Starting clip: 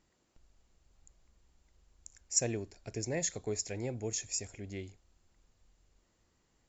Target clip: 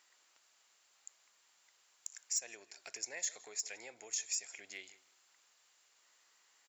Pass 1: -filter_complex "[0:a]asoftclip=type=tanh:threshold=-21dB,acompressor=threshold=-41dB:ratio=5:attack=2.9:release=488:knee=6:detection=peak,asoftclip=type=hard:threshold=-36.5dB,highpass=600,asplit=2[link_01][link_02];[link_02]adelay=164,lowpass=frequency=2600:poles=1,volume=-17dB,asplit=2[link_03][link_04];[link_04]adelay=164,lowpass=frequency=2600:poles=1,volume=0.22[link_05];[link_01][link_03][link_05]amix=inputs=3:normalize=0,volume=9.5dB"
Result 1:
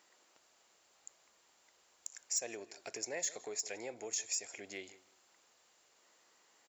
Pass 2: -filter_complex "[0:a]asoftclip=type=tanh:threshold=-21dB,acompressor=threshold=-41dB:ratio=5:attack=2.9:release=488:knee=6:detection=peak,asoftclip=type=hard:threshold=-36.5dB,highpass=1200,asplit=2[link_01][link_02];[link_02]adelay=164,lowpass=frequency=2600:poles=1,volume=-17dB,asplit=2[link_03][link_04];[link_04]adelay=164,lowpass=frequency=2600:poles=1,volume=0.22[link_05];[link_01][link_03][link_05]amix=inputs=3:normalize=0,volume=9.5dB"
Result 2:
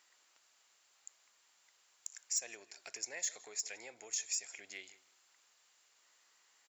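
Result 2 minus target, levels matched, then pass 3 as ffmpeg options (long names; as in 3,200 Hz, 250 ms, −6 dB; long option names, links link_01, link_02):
soft clipping: distortion +12 dB
-filter_complex "[0:a]asoftclip=type=tanh:threshold=-12.5dB,acompressor=threshold=-41dB:ratio=5:attack=2.9:release=488:knee=6:detection=peak,asoftclip=type=hard:threshold=-36.5dB,highpass=1200,asplit=2[link_01][link_02];[link_02]adelay=164,lowpass=frequency=2600:poles=1,volume=-17dB,asplit=2[link_03][link_04];[link_04]adelay=164,lowpass=frequency=2600:poles=1,volume=0.22[link_05];[link_01][link_03][link_05]amix=inputs=3:normalize=0,volume=9.5dB"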